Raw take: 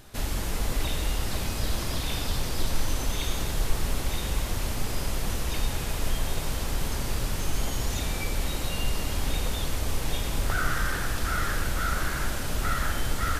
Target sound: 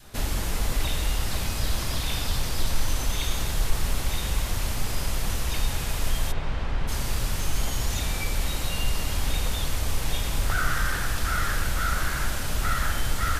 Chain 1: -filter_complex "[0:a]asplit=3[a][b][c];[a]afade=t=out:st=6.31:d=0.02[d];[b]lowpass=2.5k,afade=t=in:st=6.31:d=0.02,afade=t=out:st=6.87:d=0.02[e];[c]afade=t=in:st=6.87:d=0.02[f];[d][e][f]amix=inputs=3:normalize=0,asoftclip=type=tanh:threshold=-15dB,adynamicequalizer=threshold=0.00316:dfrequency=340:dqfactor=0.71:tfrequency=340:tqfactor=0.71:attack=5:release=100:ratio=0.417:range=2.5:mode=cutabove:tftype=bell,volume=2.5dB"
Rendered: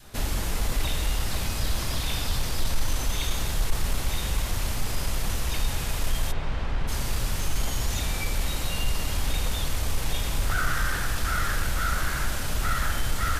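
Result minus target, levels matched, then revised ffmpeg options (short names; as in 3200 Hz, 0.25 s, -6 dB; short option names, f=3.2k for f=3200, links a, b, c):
soft clip: distortion +12 dB
-filter_complex "[0:a]asplit=3[a][b][c];[a]afade=t=out:st=6.31:d=0.02[d];[b]lowpass=2.5k,afade=t=in:st=6.31:d=0.02,afade=t=out:st=6.87:d=0.02[e];[c]afade=t=in:st=6.87:d=0.02[f];[d][e][f]amix=inputs=3:normalize=0,asoftclip=type=tanh:threshold=-8dB,adynamicequalizer=threshold=0.00316:dfrequency=340:dqfactor=0.71:tfrequency=340:tqfactor=0.71:attack=5:release=100:ratio=0.417:range=2.5:mode=cutabove:tftype=bell,volume=2.5dB"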